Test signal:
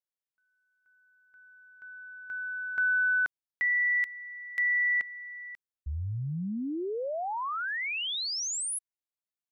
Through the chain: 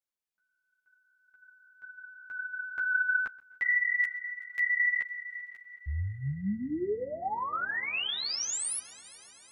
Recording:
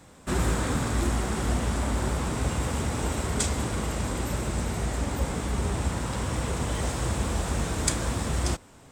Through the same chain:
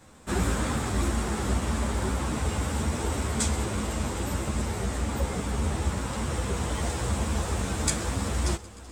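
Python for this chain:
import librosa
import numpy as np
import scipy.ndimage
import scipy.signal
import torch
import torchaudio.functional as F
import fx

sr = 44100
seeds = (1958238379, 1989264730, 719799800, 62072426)

p1 = x + fx.echo_heads(x, sr, ms=127, heads='first and third', feedback_pct=71, wet_db=-22, dry=0)
p2 = fx.ensemble(p1, sr)
y = p2 * 10.0 ** (2.5 / 20.0)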